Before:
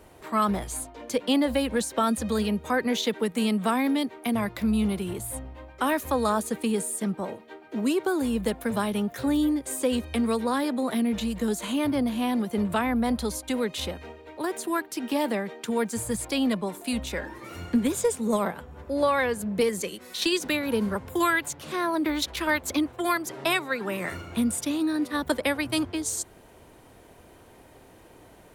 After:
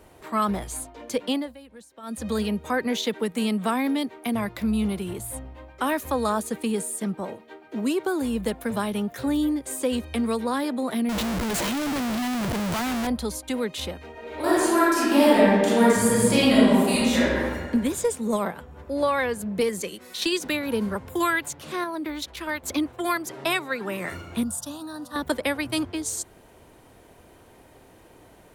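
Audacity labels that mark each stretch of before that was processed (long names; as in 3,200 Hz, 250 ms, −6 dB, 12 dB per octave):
1.250000	2.300000	duck −20.5 dB, fades 0.28 s
11.090000	13.070000	comparator with hysteresis flips at −39.5 dBFS
14.110000	17.410000	thrown reverb, RT60 1.6 s, DRR −10 dB
21.840000	22.630000	clip gain −5 dB
24.430000	25.160000	phaser with its sweep stopped centre 920 Hz, stages 4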